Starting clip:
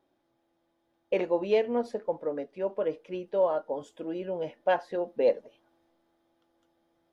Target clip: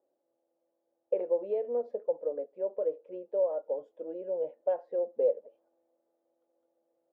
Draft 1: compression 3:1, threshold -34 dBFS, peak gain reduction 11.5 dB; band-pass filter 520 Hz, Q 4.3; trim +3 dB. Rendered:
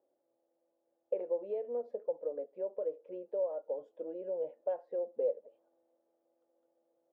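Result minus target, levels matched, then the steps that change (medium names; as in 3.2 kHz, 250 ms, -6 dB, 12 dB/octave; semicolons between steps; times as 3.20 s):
compression: peak gain reduction +5.5 dB
change: compression 3:1, threshold -25.5 dBFS, peak gain reduction 6 dB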